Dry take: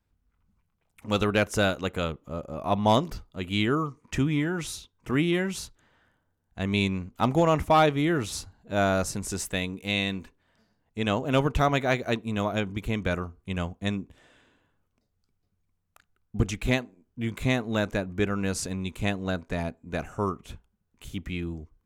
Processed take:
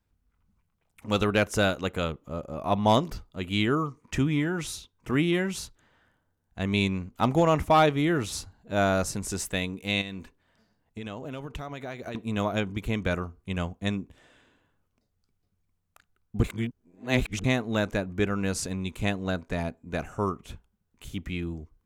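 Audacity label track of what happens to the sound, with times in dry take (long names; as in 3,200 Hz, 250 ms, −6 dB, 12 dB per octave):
10.010000	12.150000	downward compressor 12 to 1, threshold −32 dBFS
16.440000	17.440000	reverse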